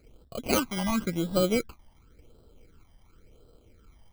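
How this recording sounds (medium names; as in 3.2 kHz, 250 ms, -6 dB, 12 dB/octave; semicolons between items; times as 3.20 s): aliases and images of a low sample rate 1.8 kHz, jitter 0%; phasing stages 12, 0.93 Hz, lowest notch 420–2200 Hz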